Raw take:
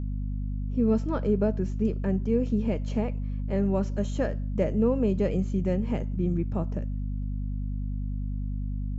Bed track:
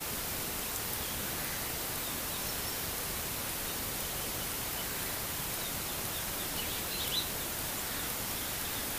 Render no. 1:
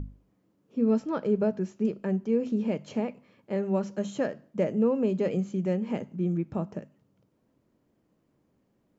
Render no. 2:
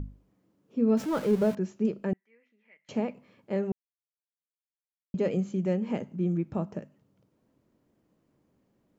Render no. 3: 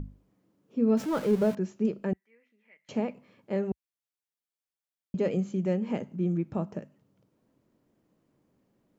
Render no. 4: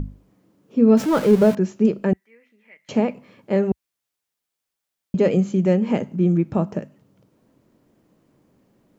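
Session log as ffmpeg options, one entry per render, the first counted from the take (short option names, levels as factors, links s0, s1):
-af "bandreject=f=50:t=h:w=6,bandreject=f=100:t=h:w=6,bandreject=f=150:t=h:w=6,bandreject=f=200:t=h:w=6,bandreject=f=250:t=h:w=6"
-filter_complex "[0:a]asettb=1/sr,asplit=3[s0][s1][s2];[s0]atrim=end=0.974[s3];[s1]atrim=start=0.97:end=1.55,asetpts=PTS-STARTPTS,afade=t=in:d=0.004:c=qsin,afade=t=out:st=0.576:d=0.004:c=qsin,aeval=exprs='val(0)+0.5*0.0168*sgn(val(0))':c=same[s4];[s2]atrim=start=1.546[s5];[s3][s4]acrossfade=d=0.004:c1=hsin:c2=qsin[s6];[s6][s5]acrossfade=d=0.004:c1=qsin:c2=hsin,asettb=1/sr,asplit=3[s7][s8][s9];[s7]atrim=end=2.134[s10];[s8]atrim=start=2.13:end=2.89,asetpts=PTS-STARTPTS,afade=t=in:d=0.004:c=qsin,afade=t=out:st=0.756:d=0.004:c=qsin,bandpass=f=2000:t=q:w=18[s11];[s9]atrim=start=2.886[s12];[s10][s11]acrossfade=d=0.004:c1=hsin:c2=qsin[s13];[s13][s12]acrossfade=d=0.004:c1=qsin:c2=hsin,asplit=3[s14][s15][s16];[s14]atrim=end=3.72,asetpts=PTS-STARTPTS,afade=t=out:st=3.716:d=0.004:c=hsin[s17];[s15]atrim=start=3.72:end=5.14,asetpts=PTS-STARTPTS,volume=0[s18];[s16]atrim=start=5.14,asetpts=PTS-STARTPTS,afade=t=in:d=0.004:c=hsin[s19];[s17][s18][s19]concat=n=3:v=0:a=1"
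-af "equalizer=f=63:t=o:w=0.75:g=-4.5"
-af "volume=3.16"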